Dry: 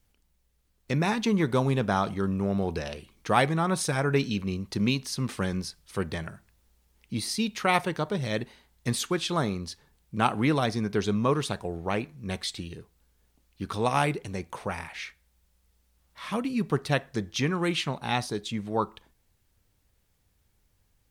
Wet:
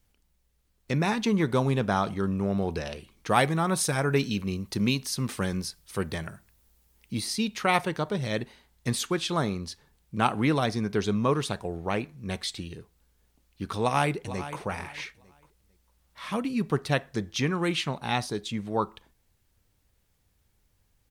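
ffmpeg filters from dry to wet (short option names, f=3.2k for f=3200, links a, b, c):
-filter_complex "[0:a]asettb=1/sr,asplit=3[a][b][c];[a]atrim=end=3.304[d];[b]atrim=start=3.3:end=7.21,asetpts=PTS-STARTPTS,afade=t=in:d=0.004:c=qsin,afade=t=out:st=3.906:d=0.004:c=qsin,highshelf=f=9.7k:g=9.5[e];[c]atrim=start=7.206[f];[d][e]acrossfade=d=0.004:c1=hsin:c2=qsin[g];[g][f]acrossfade=d=0.004:c1=qsin:c2=hsin,asplit=2[h][i];[i]afade=t=in:st=13.82:d=0.01,afade=t=out:st=14.6:d=0.01,aecho=0:1:450|900|1350:0.211349|0.0528372|0.0132093[j];[h][j]amix=inputs=2:normalize=0"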